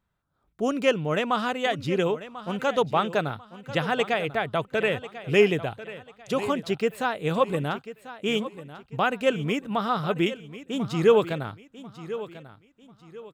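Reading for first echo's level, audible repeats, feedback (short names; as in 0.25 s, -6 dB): -14.5 dB, 3, 32%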